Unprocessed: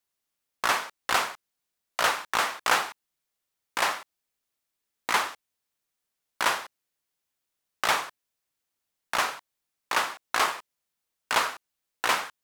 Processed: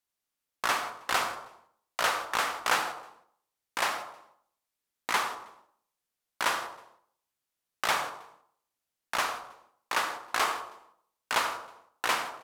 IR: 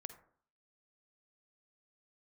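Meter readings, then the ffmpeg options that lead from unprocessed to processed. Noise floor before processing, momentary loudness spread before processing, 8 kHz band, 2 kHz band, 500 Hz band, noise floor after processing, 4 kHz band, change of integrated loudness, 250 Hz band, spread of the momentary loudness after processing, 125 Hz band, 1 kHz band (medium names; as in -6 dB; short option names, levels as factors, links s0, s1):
-84 dBFS, 12 LU, -3.0 dB, -3.0 dB, -2.5 dB, under -85 dBFS, -3.0 dB, -3.0 dB, -2.5 dB, 14 LU, -2.5 dB, -2.5 dB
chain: -filter_complex "[0:a]aecho=1:1:159|318:0.0794|0.0278[s0];[1:a]atrim=start_sample=2205,afade=t=out:st=0.39:d=0.01,atrim=end_sample=17640,asetrate=30429,aresample=44100[s1];[s0][s1]afir=irnorm=-1:irlink=0"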